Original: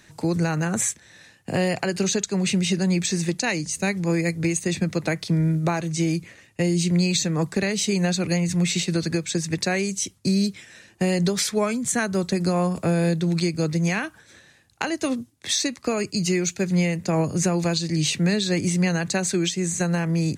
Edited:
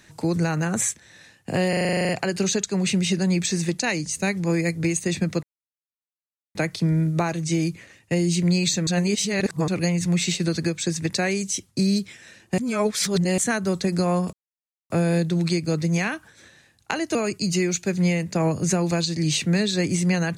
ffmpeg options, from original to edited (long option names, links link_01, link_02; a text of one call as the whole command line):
ffmpeg -i in.wav -filter_complex "[0:a]asplit=18[link_01][link_02][link_03][link_04][link_05][link_06][link_07][link_08][link_09][link_10][link_11][link_12][link_13][link_14][link_15][link_16][link_17][link_18];[link_01]atrim=end=1.732[link_19];[link_02]atrim=start=1.688:end=1.732[link_20];[link_03]atrim=start=1.688:end=1.732[link_21];[link_04]atrim=start=1.688:end=1.732[link_22];[link_05]atrim=start=1.688:end=1.732[link_23];[link_06]atrim=start=1.688:end=1.732[link_24];[link_07]atrim=start=1.688:end=1.732[link_25];[link_08]atrim=start=1.688:end=1.732[link_26];[link_09]atrim=start=1.688:end=1.732[link_27];[link_10]atrim=start=1.688:end=1.732[link_28];[link_11]atrim=start=1.688:end=5.03,asetpts=PTS-STARTPTS,afade=type=out:start_time=3.338:duration=0.004:curve=hsin,apad=pad_dur=1.12[link_29];[link_12]atrim=start=5.03:end=7.352,asetpts=PTS-STARTPTS,afade=type=in:duration=0.004:curve=hsin[link_30];[link_13]atrim=start=7.348:end=8.162,asetpts=PTS-STARTPTS,areverse[link_31];[link_14]atrim=start=8.158:end=11.062[link_32];[link_15]atrim=start=11.058:end=11.862,asetpts=PTS-STARTPTS,areverse[link_33];[link_16]atrim=start=11.858:end=12.81,asetpts=PTS-STARTPTS,afade=type=out:start_time=0.948:duration=0.004:curve=hsin,apad=pad_dur=0.57[link_34];[link_17]atrim=start=12.81:end=15.062,asetpts=PTS-STARTPTS,afade=type=in:duration=0.004:curve=hsin[link_35];[link_18]atrim=start=15.878[link_36];[link_19][link_20]acrossfade=duration=0.004:curve1=hsin:curve2=hsin[link_37];[link_37][link_21]acrossfade=duration=0.004:curve1=hsin:curve2=hsin[link_38];[link_38][link_22]acrossfade=duration=0.004:curve1=hsin:curve2=hsin[link_39];[link_39][link_23]acrossfade=duration=0.004:curve1=hsin:curve2=hsin[link_40];[link_40][link_24]acrossfade=duration=0.004:curve1=hsin:curve2=hsin[link_41];[link_41][link_25]acrossfade=duration=0.004:curve1=hsin:curve2=hsin[link_42];[link_42][link_26]acrossfade=duration=0.004:curve1=hsin:curve2=hsin[link_43];[link_43][link_27]acrossfade=duration=0.004:curve1=hsin:curve2=hsin[link_44];[link_44][link_28]acrossfade=duration=0.004:curve1=hsin:curve2=hsin[link_45];[link_29][link_30]concat=n=2:v=0:a=1[link_46];[link_45][link_46]acrossfade=duration=0.004:curve1=hsin:curve2=hsin[link_47];[link_47][link_31]acrossfade=duration=0.004:curve1=hsin:curve2=hsin[link_48];[link_48][link_32]acrossfade=duration=0.004:curve1=hsin:curve2=hsin[link_49];[link_49][link_33]acrossfade=duration=0.004:curve1=hsin:curve2=hsin[link_50];[link_34][link_35]concat=n=2:v=0:a=1[link_51];[link_50][link_51]acrossfade=duration=0.004:curve1=hsin:curve2=hsin[link_52];[link_52][link_36]acrossfade=duration=0.004:curve1=hsin:curve2=hsin" out.wav